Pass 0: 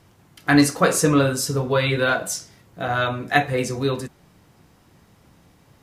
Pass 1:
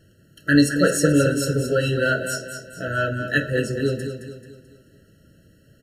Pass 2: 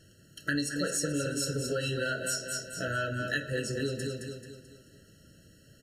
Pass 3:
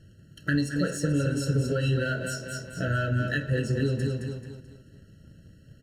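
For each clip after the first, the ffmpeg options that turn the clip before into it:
-af "aecho=1:1:218|436|654|872|1090:0.376|0.165|0.0728|0.032|0.0141,afftfilt=real='re*eq(mod(floor(b*sr/1024/650),2),0)':imag='im*eq(mod(floor(b*sr/1024/650),2),0)':win_size=1024:overlap=0.75"
-af "equalizer=f=6.2k:w=0.54:g=9.5,acompressor=threshold=-25dB:ratio=5,volume=-4dB"
-filter_complex "[0:a]bass=f=250:g=10,treble=f=4k:g=-8,asplit=2[a][b];[b]aeval=exprs='sgn(val(0))*max(abs(val(0))-0.00596,0)':c=same,volume=-6dB[c];[a][c]amix=inputs=2:normalize=0,volume=-1.5dB"

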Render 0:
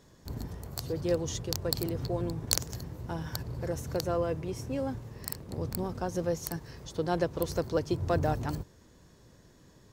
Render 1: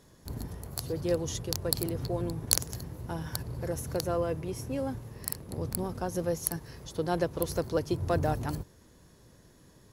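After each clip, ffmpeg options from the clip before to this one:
-af "equalizer=f=11k:w=4.6:g=15"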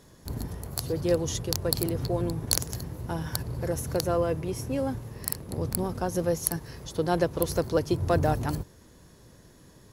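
-af "apsyclip=10dB,volume=-6dB"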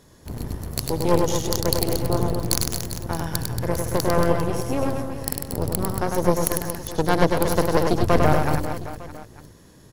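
-af "aeval=exprs='0.531*(cos(1*acos(clip(val(0)/0.531,-1,1)))-cos(1*PI/2))+0.106*(cos(8*acos(clip(val(0)/0.531,-1,1)))-cos(8*PI/2))':c=same,aecho=1:1:100|230|399|618.7|904.3:0.631|0.398|0.251|0.158|0.1,volume=1.5dB"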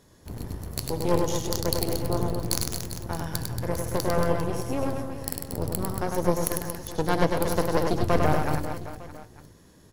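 -af "flanger=delay=9.9:depth=1.8:regen=-78:speed=0.26:shape=triangular"

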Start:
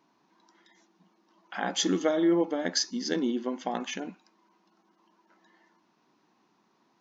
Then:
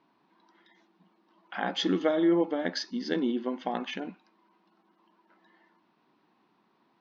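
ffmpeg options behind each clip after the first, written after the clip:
-af "lowpass=f=4.2k:w=0.5412,lowpass=f=4.2k:w=1.3066"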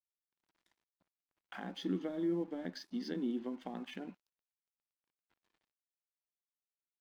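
-filter_complex "[0:a]acrossover=split=300[a][b];[b]acompressor=threshold=-40dB:ratio=5[c];[a][c]amix=inputs=2:normalize=0,aeval=exprs='sgn(val(0))*max(abs(val(0))-0.00126,0)':c=same,volume=-4.5dB"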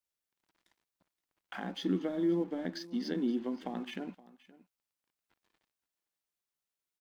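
-af "aecho=1:1:521:0.1,volume=4.5dB"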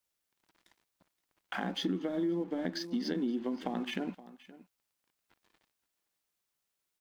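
-af "acompressor=threshold=-36dB:ratio=5,volume=6dB"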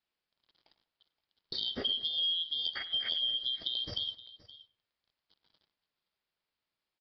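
-filter_complex "[0:a]afftfilt=real='real(if(lt(b,272),68*(eq(floor(b/68),0)*2+eq(floor(b/68),1)*3+eq(floor(b/68),2)*0+eq(floor(b/68),3)*1)+mod(b,68),b),0)':imag='imag(if(lt(b,272),68*(eq(floor(b/68),0)*2+eq(floor(b/68),1)*3+eq(floor(b/68),2)*0+eq(floor(b/68),3)*1)+mod(b,68),b),0)':win_size=2048:overlap=0.75,asplit=2[a][b];[b]adelay=98,lowpass=f=1.5k:p=1,volume=-15dB,asplit=2[c][d];[d]adelay=98,lowpass=f=1.5k:p=1,volume=0.39,asplit=2[e][f];[f]adelay=98,lowpass=f=1.5k:p=1,volume=0.39,asplit=2[g][h];[h]adelay=98,lowpass=f=1.5k:p=1,volume=0.39[i];[a][c][e][g][i]amix=inputs=5:normalize=0,aresample=11025,aresample=44100"

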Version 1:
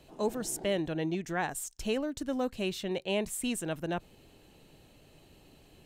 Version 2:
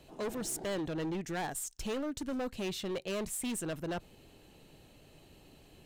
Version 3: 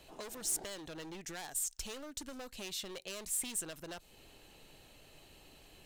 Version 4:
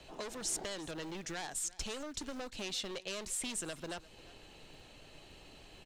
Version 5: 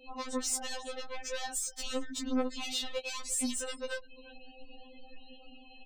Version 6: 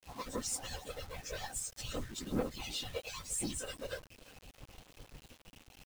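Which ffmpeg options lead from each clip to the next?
-af "volume=32.5dB,asoftclip=hard,volume=-32.5dB"
-filter_complex "[0:a]equalizer=f=160:w=0.32:g=-9.5,acrossover=split=4000[a][b];[a]acompressor=threshold=-48dB:ratio=6[c];[c][b]amix=inputs=2:normalize=0,volume=3.5dB"
-filter_complex "[0:a]lowpass=6.9k,acrossover=split=220|1600|3700[a][b][c][d];[a]acrusher=bits=2:mode=log:mix=0:aa=0.000001[e];[e][b][c][d]amix=inputs=4:normalize=0,aecho=1:1:347:0.1,volume=3.5dB"
-af "afftfilt=real='re*gte(hypot(re,im),0.00282)':imag='im*gte(hypot(re,im),0.00282)':win_size=1024:overlap=0.75,asoftclip=type=tanh:threshold=-32dB,afftfilt=real='re*3.46*eq(mod(b,12),0)':imag='im*3.46*eq(mod(b,12),0)':win_size=2048:overlap=0.75,volume=8dB"
-af "afftfilt=real='hypot(re,im)*cos(2*PI*random(0))':imag='hypot(re,im)*sin(2*PI*random(1))':win_size=512:overlap=0.75,acrusher=bits=8:mix=0:aa=0.000001,aeval=exprs='sgn(val(0))*max(abs(val(0))-0.00106,0)':c=same,volume=2dB"

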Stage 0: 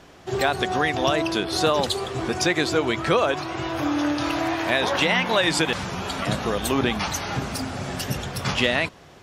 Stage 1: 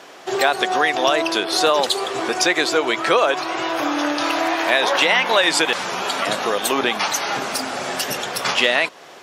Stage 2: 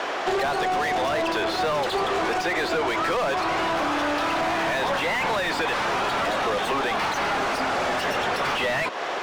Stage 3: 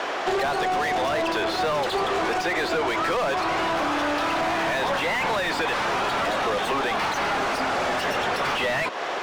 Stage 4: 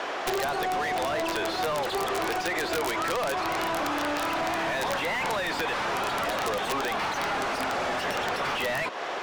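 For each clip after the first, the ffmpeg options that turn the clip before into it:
-filter_complex "[0:a]highpass=420,asplit=2[a][b];[b]acompressor=threshold=-31dB:ratio=6,volume=-1dB[c];[a][c]amix=inputs=2:normalize=0,volume=3.5dB"
-filter_complex "[0:a]highshelf=f=9k:g=-5.5,asplit=2[a][b];[b]highpass=f=720:p=1,volume=33dB,asoftclip=type=tanh:threshold=-1.5dB[c];[a][c]amix=inputs=2:normalize=0,lowpass=f=1.5k:p=1,volume=-6dB,acrossover=split=130|330|3900[d][e][f][g];[d]acompressor=threshold=-38dB:ratio=4[h];[e]acompressor=threshold=-27dB:ratio=4[i];[f]acompressor=threshold=-16dB:ratio=4[j];[g]acompressor=threshold=-33dB:ratio=4[k];[h][i][j][k]amix=inputs=4:normalize=0,volume=-7.5dB"
-af anull
-af "aeval=exprs='(mod(5.96*val(0)+1,2)-1)/5.96':c=same,volume=-4dB"

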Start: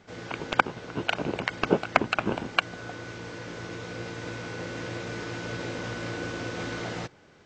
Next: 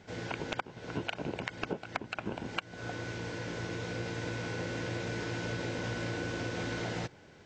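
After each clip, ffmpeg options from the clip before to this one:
-af "bandreject=f=1.2k:w=7.5,acompressor=threshold=-32dB:ratio=12,equalizer=f=89:w=0.87:g=3"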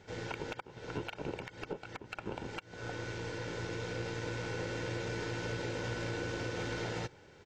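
-af "aecho=1:1:2.2:0.36,alimiter=level_in=0.5dB:limit=-24dB:level=0:latency=1:release=152,volume=-0.5dB,aeval=exprs='0.0596*(cos(1*acos(clip(val(0)/0.0596,-1,1)))-cos(1*PI/2))+0.00237*(cos(6*acos(clip(val(0)/0.0596,-1,1)))-cos(6*PI/2))':c=same,volume=-2dB"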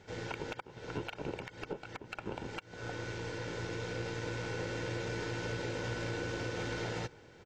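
-filter_complex "[0:a]asplit=2[a][b];[b]adelay=816.3,volume=-23dB,highshelf=f=4k:g=-18.4[c];[a][c]amix=inputs=2:normalize=0"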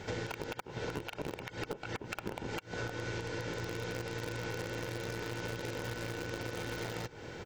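-filter_complex "[0:a]asplit=2[a][b];[b]acrusher=bits=4:mix=0:aa=0.000001,volume=-6dB[c];[a][c]amix=inputs=2:normalize=0,alimiter=level_in=5.5dB:limit=-24dB:level=0:latency=1:release=223,volume=-5.5dB,acompressor=threshold=-47dB:ratio=6,volume=12dB"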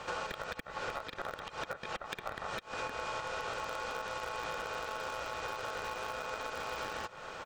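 -filter_complex "[0:a]asplit=2[a][b];[b]aeval=exprs='0.02*(abs(mod(val(0)/0.02+3,4)-2)-1)':c=same,volume=-10dB[c];[a][c]amix=inputs=2:normalize=0,aeval=exprs='val(0)*sin(2*PI*980*n/s)':c=same,volume=1dB"

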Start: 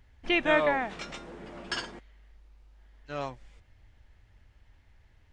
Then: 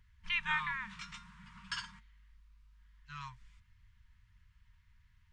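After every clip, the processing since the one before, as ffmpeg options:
-af "afftfilt=real='re*(1-between(b*sr/4096,220,910))':imag='im*(1-between(b*sr/4096,220,910))':win_size=4096:overlap=0.75,volume=-6dB"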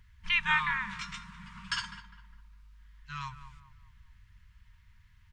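-filter_complex "[0:a]asplit=2[a][b];[b]adelay=203,lowpass=f=1.7k:p=1,volume=-11.5dB,asplit=2[c][d];[d]adelay=203,lowpass=f=1.7k:p=1,volume=0.44,asplit=2[e][f];[f]adelay=203,lowpass=f=1.7k:p=1,volume=0.44,asplit=2[g][h];[h]adelay=203,lowpass=f=1.7k:p=1,volume=0.44[i];[a][c][e][g][i]amix=inputs=5:normalize=0,volume=6.5dB"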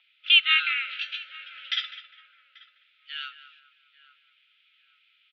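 -filter_complex "[0:a]aexciter=amount=4.5:drive=8.5:freq=2.3k,asplit=2[a][b];[b]adelay=838,lowpass=f=1k:p=1,volume=-16dB,asplit=2[c][d];[d]adelay=838,lowpass=f=1k:p=1,volume=0.38,asplit=2[e][f];[f]adelay=838,lowpass=f=1k:p=1,volume=0.38[g];[a][c][e][g]amix=inputs=4:normalize=0,highpass=f=400:t=q:w=0.5412,highpass=f=400:t=q:w=1.307,lowpass=f=2.9k:t=q:w=0.5176,lowpass=f=2.9k:t=q:w=0.7071,lowpass=f=2.9k:t=q:w=1.932,afreqshift=360"

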